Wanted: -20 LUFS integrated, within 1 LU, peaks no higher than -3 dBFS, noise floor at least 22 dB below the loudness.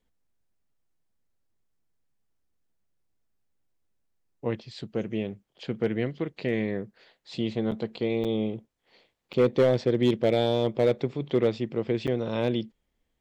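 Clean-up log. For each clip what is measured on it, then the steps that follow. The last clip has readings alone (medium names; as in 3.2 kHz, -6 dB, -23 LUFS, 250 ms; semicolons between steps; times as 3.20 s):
clipped samples 0.3%; clipping level -14.5 dBFS; dropouts 4; longest dropout 7.5 ms; loudness -27.5 LUFS; peak level -14.5 dBFS; loudness target -20.0 LUFS
-> clip repair -14.5 dBFS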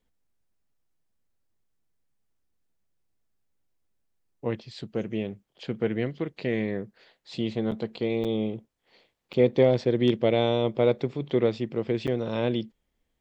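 clipped samples 0.0%; dropouts 4; longest dropout 7.5 ms
-> interpolate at 7.71/8.24/9.33/12.07 s, 7.5 ms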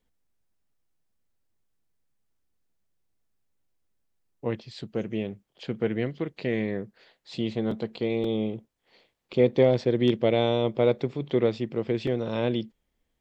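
dropouts 0; loudness -27.0 LUFS; peak level -8.5 dBFS; loudness target -20.0 LUFS
-> trim +7 dB; peak limiter -3 dBFS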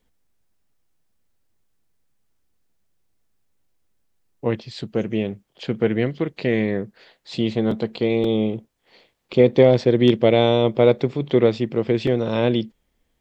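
loudness -20.5 LUFS; peak level -3.0 dBFS; noise floor -70 dBFS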